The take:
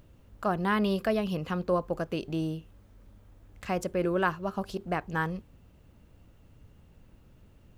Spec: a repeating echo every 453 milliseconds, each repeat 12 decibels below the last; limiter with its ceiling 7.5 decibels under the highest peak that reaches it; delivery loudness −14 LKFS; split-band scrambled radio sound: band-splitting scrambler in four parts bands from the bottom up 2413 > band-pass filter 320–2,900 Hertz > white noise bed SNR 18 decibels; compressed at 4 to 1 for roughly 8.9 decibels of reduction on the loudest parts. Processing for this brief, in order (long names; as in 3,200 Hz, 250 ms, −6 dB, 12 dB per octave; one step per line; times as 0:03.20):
downward compressor 4 to 1, threshold −33 dBFS
brickwall limiter −29.5 dBFS
repeating echo 453 ms, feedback 25%, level −12 dB
band-splitting scrambler in four parts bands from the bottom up 2413
band-pass filter 320–2,900 Hz
white noise bed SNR 18 dB
level +27 dB